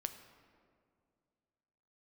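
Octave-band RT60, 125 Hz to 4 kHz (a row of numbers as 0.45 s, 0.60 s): 2.7 s, 2.6 s, 2.4 s, 2.1 s, 1.6 s, 1.1 s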